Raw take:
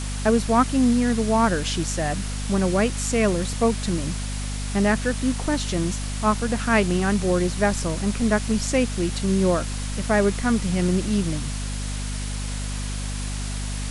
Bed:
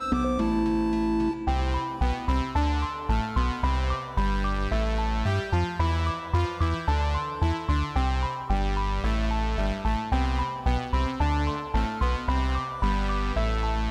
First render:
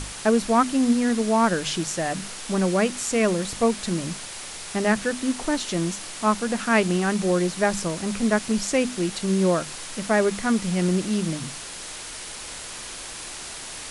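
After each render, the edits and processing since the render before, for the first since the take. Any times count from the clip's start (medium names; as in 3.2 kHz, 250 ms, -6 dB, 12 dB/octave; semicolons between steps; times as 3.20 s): hum notches 50/100/150/200/250 Hz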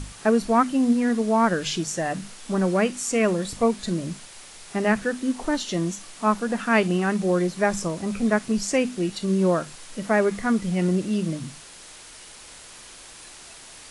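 noise print and reduce 8 dB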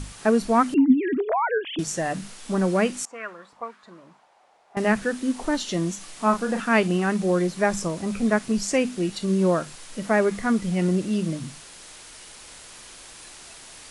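0.74–1.79 s: formants replaced by sine waves; 3.05–4.77 s: auto-wah 700–1500 Hz, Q 3.2, up, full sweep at -16.5 dBFS; 5.98–6.60 s: doubling 36 ms -7 dB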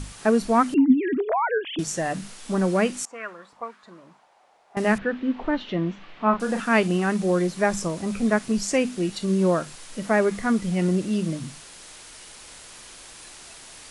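4.98–6.40 s: low-pass 3.1 kHz 24 dB/octave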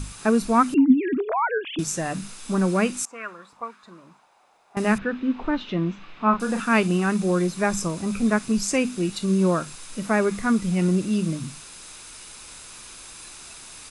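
treble shelf 9.4 kHz +6 dB; comb 0.8 ms, depth 32%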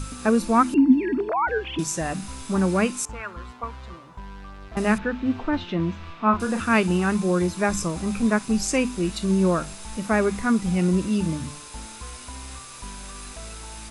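add bed -14.5 dB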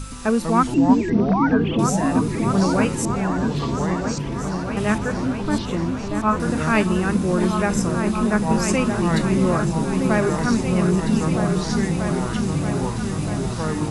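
ever faster or slower copies 108 ms, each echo -5 st, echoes 3, each echo -6 dB; on a send: delay with an opening low-pass 633 ms, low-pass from 400 Hz, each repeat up 2 oct, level -3 dB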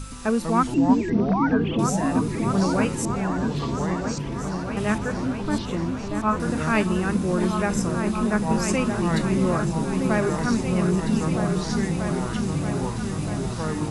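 trim -3 dB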